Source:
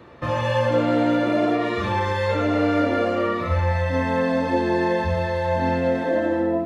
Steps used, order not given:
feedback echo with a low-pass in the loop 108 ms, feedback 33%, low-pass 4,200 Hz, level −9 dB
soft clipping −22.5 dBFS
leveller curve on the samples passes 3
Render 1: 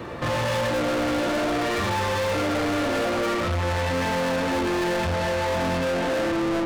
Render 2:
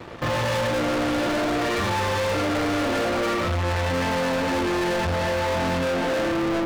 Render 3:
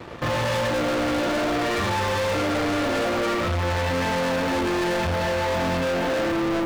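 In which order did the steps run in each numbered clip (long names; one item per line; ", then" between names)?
feedback echo with a low-pass in the loop, then soft clipping, then leveller curve on the samples
leveller curve on the samples, then feedback echo with a low-pass in the loop, then soft clipping
feedback echo with a low-pass in the loop, then leveller curve on the samples, then soft clipping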